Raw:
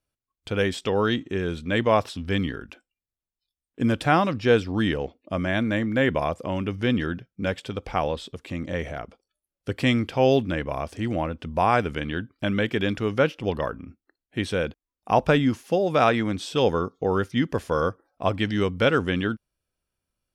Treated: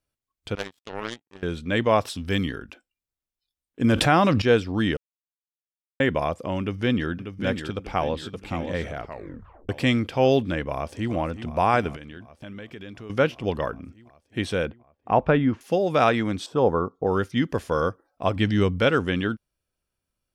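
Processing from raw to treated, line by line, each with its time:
0.55–1.43 s: power-law waveshaper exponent 3
2.05–2.59 s: treble shelf 6.5 kHz +10.5 dB
3.84–4.42 s: level flattener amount 70%
4.97–6.00 s: mute
6.60–7.11 s: echo throw 590 ms, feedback 40%, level -7.5 dB
7.65–8.31 s: echo throw 570 ms, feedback 55%, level -8.5 dB
9.02 s: tape stop 0.67 s
10.72–11.12 s: echo throw 370 ms, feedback 80%, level -11.5 dB
11.96–13.10 s: compression 3:1, threshold -41 dBFS
14.66–15.61 s: low-pass 2.1 kHz
16.46–17.07 s: resonant high shelf 1.7 kHz -13.5 dB, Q 1.5
18.36–18.80 s: bass shelf 190 Hz +7.5 dB

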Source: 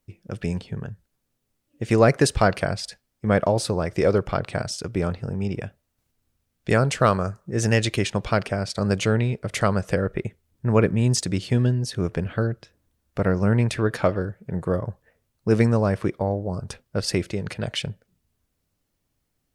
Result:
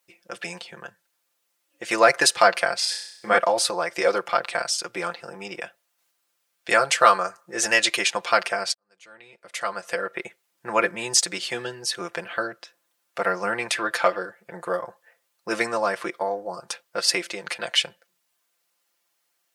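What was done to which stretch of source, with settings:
2.78–3.38 s: flutter echo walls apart 5.6 m, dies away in 0.71 s
8.74–10.24 s: fade in quadratic
whole clip: high-pass 800 Hz 12 dB/octave; comb 5.8 ms, depth 77%; trim +5 dB

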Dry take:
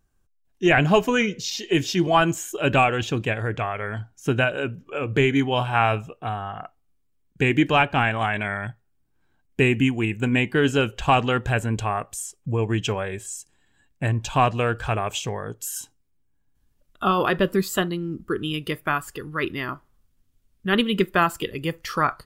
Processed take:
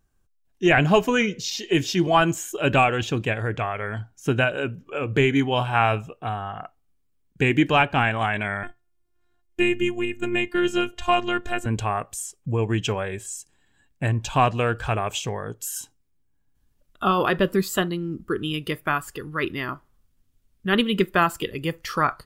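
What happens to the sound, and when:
8.63–11.66 s: robot voice 352 Hz

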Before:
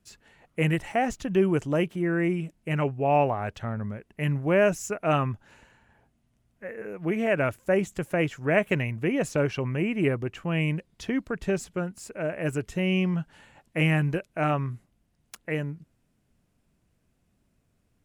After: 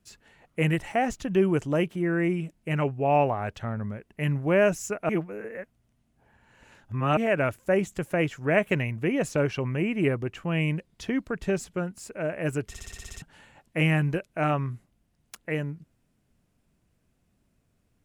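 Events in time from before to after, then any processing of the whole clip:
5.09–7.17 s: reverse
12.68 s: stutter in place 0.06 s, 9 plays

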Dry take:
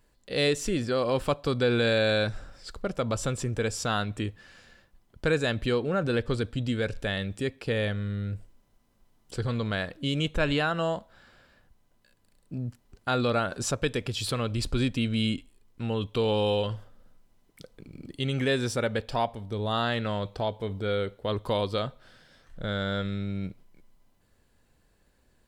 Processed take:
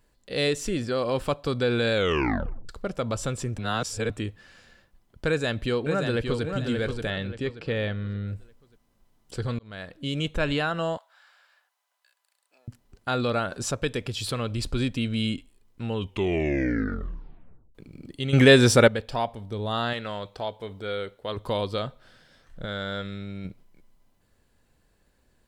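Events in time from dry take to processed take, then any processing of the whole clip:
1.94 s: tape stop 0.75 s
3.58–4.10 s: reverse
5.28–6.44 s: echo throw 580 ms, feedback 35%, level -5.5 dB
7.10–8.28 s: low-pass 4.7 kHz
9.59–10.37 s: fade in equal-power
10.97–12.68 s: high-pass 770 Hz 24 dB/octave
15.94 s: tape stop 1.81 s
18.33–18.88 s: gain +11.5 dB
19.93–21.37 s: bass shelf 320 Hz -9 dB
22.65–23.45 s: bass shelf 340 Hz -5.5 dB

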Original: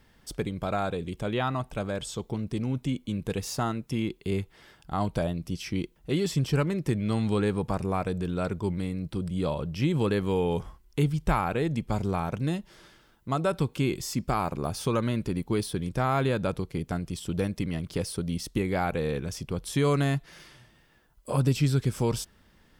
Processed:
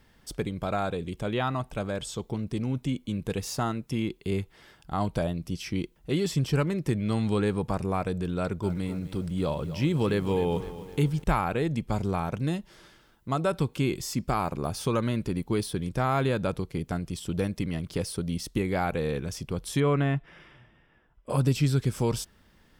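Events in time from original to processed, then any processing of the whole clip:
8.37–11.24 s: bit-crushed delay 255 ms, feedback 55%, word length 8-bit, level -13.5 dB
19.80–21.30 s: Savitzky-Golay filter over 25 samples

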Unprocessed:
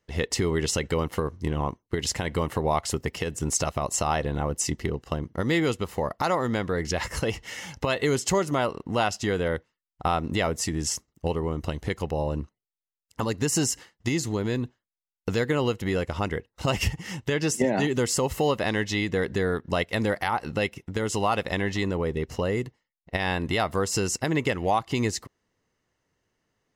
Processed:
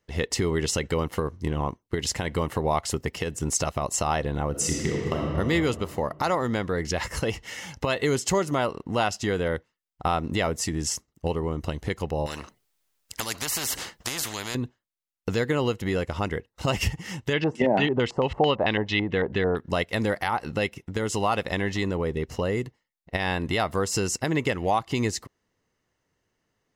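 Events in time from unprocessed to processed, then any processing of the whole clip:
4.50–5.35 s: reverb throw, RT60 2.5 s, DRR -2 dB
12.26–14.55 s: spectrum-flattening compressor 4:1
17.33–19.57 s: LFO low-pass square 4.5 Hz 840–3000 Hz

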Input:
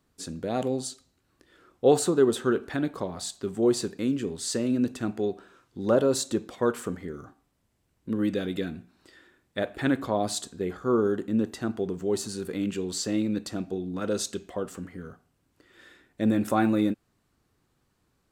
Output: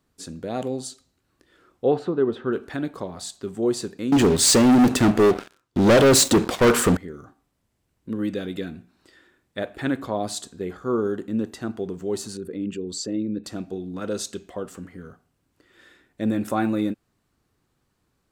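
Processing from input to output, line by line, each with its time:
1.86–2.53 s: distance through air 350 m
4.12–6.97 s: waveshaping leveller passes 5
12.37–13.44 s: resonances exaggerated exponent 1.5

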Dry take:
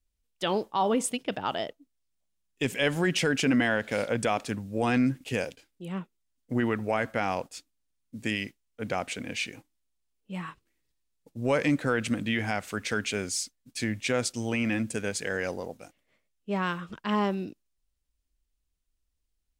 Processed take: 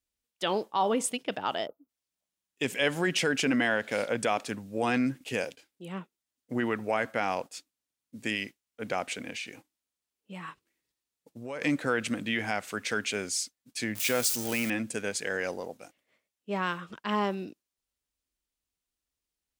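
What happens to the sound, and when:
1.67–1.89 s: time-frequency box 1.5–11 kHz -29 dB
9.30–11.62 s: compression 4:1, threshold -34 dBFS
13.95–14.70 s: zero-crossing glitches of -23.5 dBFS
whole clip: high-pass 260 Hz 6 dB/octave

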